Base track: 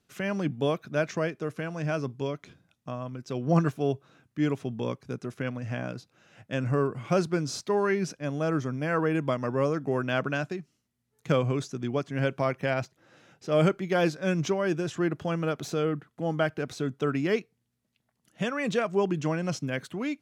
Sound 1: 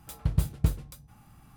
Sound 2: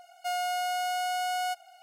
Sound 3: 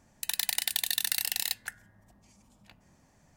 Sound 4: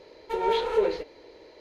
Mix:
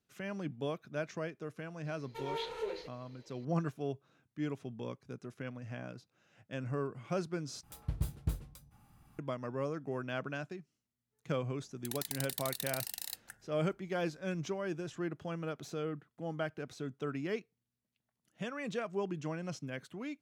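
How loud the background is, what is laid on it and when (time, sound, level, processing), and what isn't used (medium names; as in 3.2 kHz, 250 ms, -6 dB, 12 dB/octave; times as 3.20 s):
base track -10.5 dB
1.85 s: add 4 -15.5 dB + treble shelf 2.4 kHz +11 dB
7.63 s: replace with 1 -8 dB + saturation -13.5 dBFS
11.62 s: add 3 -9.5 dB + peaking EQ 2.4 kHz -7.5 dB 1.3 oct
not used: 2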